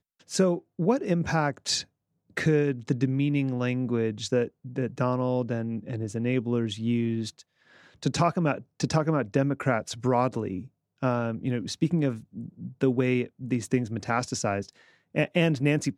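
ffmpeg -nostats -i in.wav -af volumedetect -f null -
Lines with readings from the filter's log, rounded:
mean_volume: -27.3 dB
max_volume: -8.8 dB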